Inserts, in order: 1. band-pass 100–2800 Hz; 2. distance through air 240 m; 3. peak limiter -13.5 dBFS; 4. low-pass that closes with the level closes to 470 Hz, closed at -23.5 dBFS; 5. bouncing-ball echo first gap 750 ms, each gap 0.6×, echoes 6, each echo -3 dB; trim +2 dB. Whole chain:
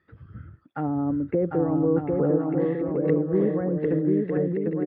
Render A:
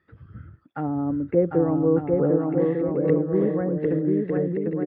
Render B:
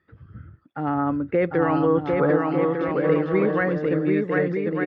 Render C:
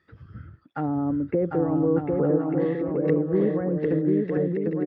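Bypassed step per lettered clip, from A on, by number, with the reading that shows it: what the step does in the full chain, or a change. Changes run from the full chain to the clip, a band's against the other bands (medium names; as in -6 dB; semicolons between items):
3, loudness change +1.5 LU; 4, 2 kHz band +13.5 dB; 2, 2 kHz band +1.5 dB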